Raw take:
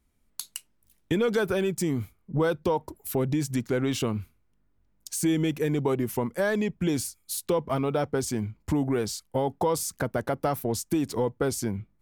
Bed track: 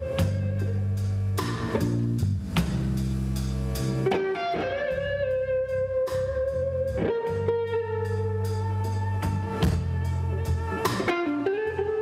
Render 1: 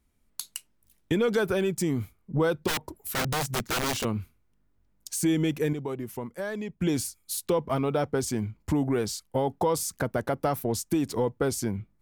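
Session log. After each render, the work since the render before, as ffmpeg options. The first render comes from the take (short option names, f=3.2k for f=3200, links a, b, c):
-filter_complex "[0:a]asplit=3[a][b][c];[a]afade=t=out:st=2.67:d=0.02[d];[b]aeval=exprs='(mod(14.1*val(0)+1,2)-1)/14.1':c=same,afade=t=in:st=2.67:d=0.02,afade=t=out:st=4.03:d=0.02[e];[c]afade=t=in:st=4.03:d=0.02[f];[d][e][f]amix=inputs=3:normalize=0,asplit=3[g][h][i];[g]atrim=end=5.732[j];[h]atrim=start=5.728:end=6.802,asetpts=PTS-STARTPTS,volume=-7.5dB[k];[i]atrim=start=6.798[l];[j][k]acrossfade=d=0.004:c1=hsin:c2=hsin[m];[m][l]acrossfade=d=0.004:c1=hsin:c2=hsin"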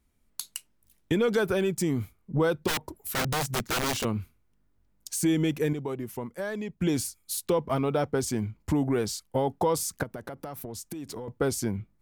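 -filter_complex "[0:a]asettb=1/sr,asplit=3[a][b][c];[a]atrim=end=10.034[d];[b]atrim=start=10.03:end=11.28,asetpts=PTS-STARTPTS,afade=t=in:d=0.004:c=qsin,afade=t=out:st=1.246:d=0.004:c=qsin,acompressor=threshold=-34dB:ratio=10:attack=3.2:release=140:knee=1:detection=peak[e];[c]atrim=start=11.276[f];[d][e]acrossfade=d=0.004:c1=hsin:c2=qsin[g];[g][f]acrossfade=d=0.004:c1=qsin:c2=hsin"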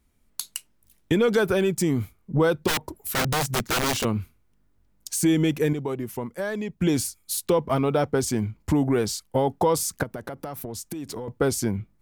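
-af "volume=4dB"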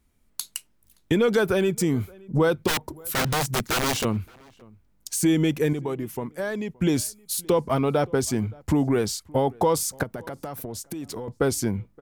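-filter_complex "[0:a]asplit=2[a][b];[b]adelay=571.4,volume=-25dB,highshelf=f=4k:g=-12.9[c];[a][c]amix=inputs=2:normalize=0"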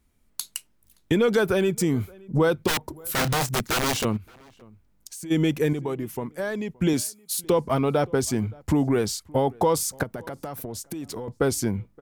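-filter_complex "[0:a]asettb=1/sr,asplit=3[a][b][c];[a]atrim=end=3.004[d];[b]atrim=start=3:end=3.49,asetpts=PTS-STARTPTS,afade=t=in:d=0.004:c=qsin,afade=t=out:st=0.486:d=0.004:c=qsin,asplit=2[e][f];[f]adelay=31,volume=-11.5dB[g];[e][g]amix=inputs=2:normalize=0,atrim=end_sample=21609[h];[c]atrim=start=3.486[i];[d][h]acrossfade=d=0.004:c1=hsin:c2=qsin[j];[j][i]acrossfade=d=0.004:c1=qsin:c2=hsin,asplit=3[k][l][m];[k]afade=t=out:st=4.16:d=0.02[n];[l]acompressor=threshold=-40dB:ratio=3:attack=3.2:release=140:knee=1:detection=peak,afade=t=in:st=4.16:d=0.02,afade=t=out:st=5.3:d=0.02[o];[m]afade=t=in:st=5.3:d=0.02[p];[n][o][p]amix=inputs=3:normalize=0,asettb=1/sr,asplit=3[q][r][s];[q]atrim=end=6.934[t];[r]atrim=start=6.93:end=7.44,asetpts=PTS-STARTPTS,afade=t=in:d=0.004:c=qsin,afade=t=out:st=0.506:d=0.004:c=qsin,highpass=140[u];[s]atrim=start=7.436[v];[t][u]acrossfade=d=0.004:c1=hsin:c2=qsin[w];[w][v]acrossfade=d=0.004:c1=qsin:c2=hsin"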